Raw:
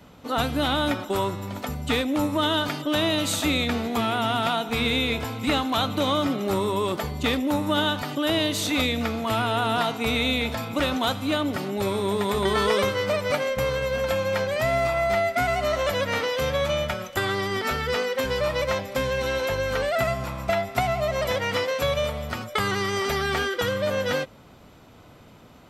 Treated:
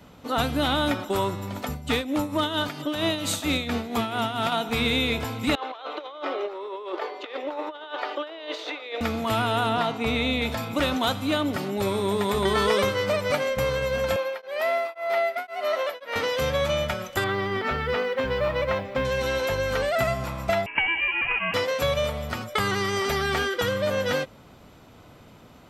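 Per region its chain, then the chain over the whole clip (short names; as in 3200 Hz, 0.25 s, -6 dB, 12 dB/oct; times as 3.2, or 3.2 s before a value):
1.71–4.52 tremolo 4.4 Hz, depth 60% + overloaded stage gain 15.5 dB
5.55–9.01 steep high-pass 360 Hz 48 dB/oct + negative-ratio compressor -30 dBFS, ratio -0.5 + air absorption 260 m
9.69–10.42 LPF 3300 Hz 6 dB/oct + notch 1500 Hz, Q 16
14.16–16.16 HPF 370 Hz 24 dB/oct + bell 7200 Hz -11 dB 0.81 oct + beating tremolo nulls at 1.9 Hz
17.24–19.05 LPF 2900 Hz + companded quantiser 8-bit
20.66–21.54 HPF 130 Hz 24 dB/oct + inverted band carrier 3000 Hz
whole clip: dry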